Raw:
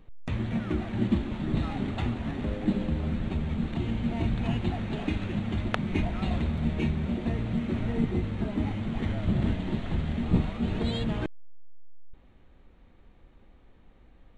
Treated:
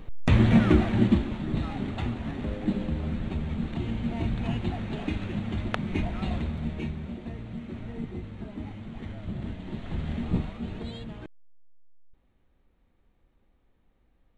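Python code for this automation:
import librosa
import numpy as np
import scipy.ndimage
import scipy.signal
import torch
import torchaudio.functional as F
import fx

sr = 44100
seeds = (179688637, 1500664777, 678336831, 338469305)

y = fx.gain(x, sr, db=fx.line((0.64, 11.0), (1.44, -1.0), (6.27, -1.0), (7.29, -8.5), (9.53, -8.5), (10.13, -1.0), (11.17, -11.0)))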